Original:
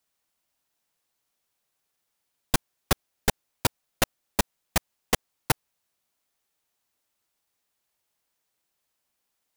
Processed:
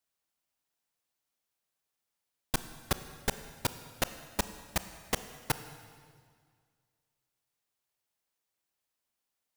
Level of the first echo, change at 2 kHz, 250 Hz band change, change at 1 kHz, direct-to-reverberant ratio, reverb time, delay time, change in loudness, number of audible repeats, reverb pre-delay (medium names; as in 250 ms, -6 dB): no echo, -7.0 dB, -7.0 dB, -7.0 dB, 11.0 dB, 1.9 s, no echo, -7.0 dB, no echo, 24 ms